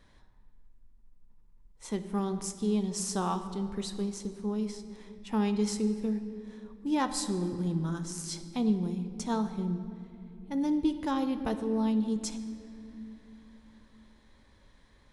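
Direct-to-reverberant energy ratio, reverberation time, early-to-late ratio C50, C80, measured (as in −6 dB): 8.5 dB, 2.7 s, 10.0 dB, 11.0 dB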